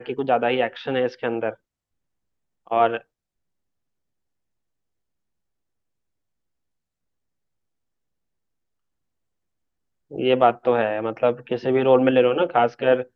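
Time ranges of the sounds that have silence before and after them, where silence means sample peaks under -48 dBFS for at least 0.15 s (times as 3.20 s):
2.67–3.02 s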